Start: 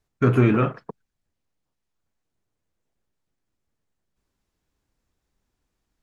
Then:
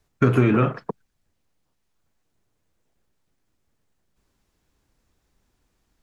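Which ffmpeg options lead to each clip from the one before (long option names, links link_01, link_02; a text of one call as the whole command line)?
ffmpeg -i in.wav -filter_complex "[0:a]acrossover=split=270|3000[link_01][link_02][link_03];[link_01]acompressor=threshold=-26dB:ratio=4[link_04];[link_02]acompressor=threshold=-27dB:ratio=4[link_05];[link_03]acompressor=threshold=-50dB:ratio=4[link_06];[link_04][link_05][link_06]amix=inputs=3:normalize=0,volume=7dB" out.wav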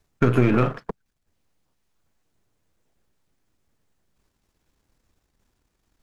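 ffmpeg -i in.wav -af "aeval=exprs='if(lt(val(0),0),0.447*val(0),val(0))':channel_layout=same,volume=1.5dB" out.wav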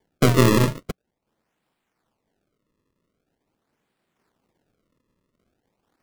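ffmpeg -i in.wav -filter_complex "[0:a]acrossover=split=140|760[link_01][link_02][link_03];[link_01]acrusher=bits=6:mix=0:aa=0.000001[link_04];[link_03]acompressor=threshold=-36dB:ratio=6[link_05];[link_04][link_02][link_05]amix=inputs=3:normalize=0,acrusher=samples=33:mix=1:aa=0.000001:lfo=1:lforange=52.8:lforate=0.44,volume=2.5dB" out.wav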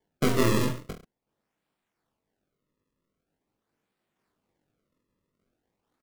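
ffmpeg -i in.wav -af "aecho=1:1:20|43|69.45|99.87|134.8:0.631|0.398|0.251|0.158|0.1,volume=-8.5dB" out.wav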